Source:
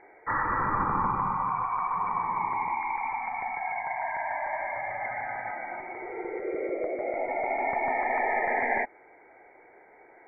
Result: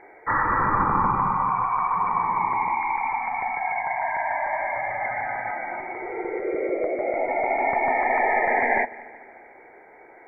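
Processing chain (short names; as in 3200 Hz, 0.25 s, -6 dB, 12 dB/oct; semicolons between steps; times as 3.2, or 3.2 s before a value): multi-head echo 74 ms, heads second and third, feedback 58%, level -22.5 dB; gain +5.5 dB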